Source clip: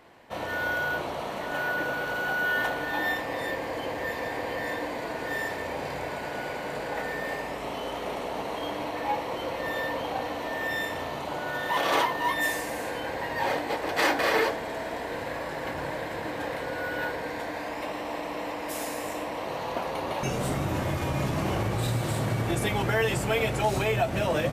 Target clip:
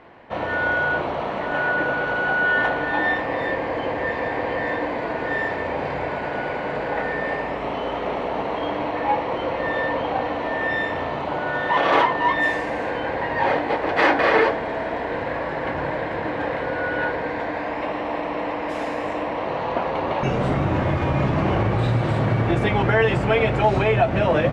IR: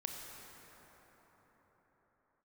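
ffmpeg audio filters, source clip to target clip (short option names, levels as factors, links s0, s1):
-af "lowpass=2500,volume=2.37"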